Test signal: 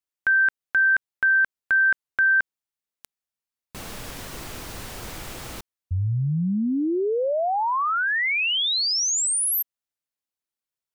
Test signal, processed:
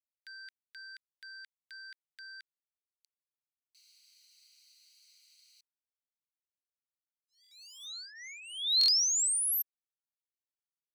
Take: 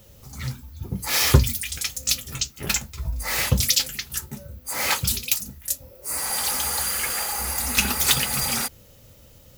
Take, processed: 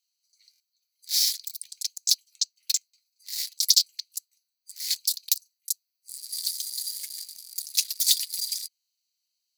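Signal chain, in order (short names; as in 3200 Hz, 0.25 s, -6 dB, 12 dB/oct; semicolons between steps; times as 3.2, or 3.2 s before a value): Wiener smoothing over 25 samples; steep high-pass 2000 Hz 48 dB/oct; resonant high shelf 3400 Hz +8.5 dB, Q 3; stuck buffer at 0.51/7.42/8.79, samples 1024, times 3; gain -10 dB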